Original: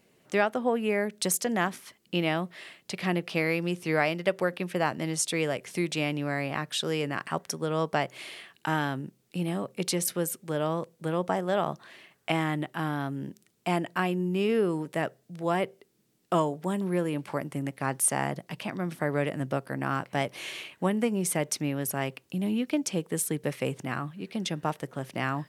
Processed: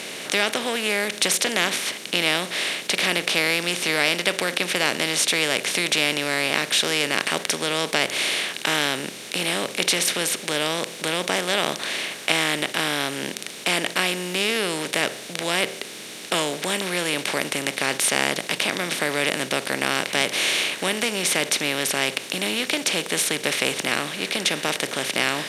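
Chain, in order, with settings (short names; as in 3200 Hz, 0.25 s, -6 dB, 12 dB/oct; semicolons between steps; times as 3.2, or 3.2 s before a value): per-bin compression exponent 0.4; weighting filter D; gain -4.5 dB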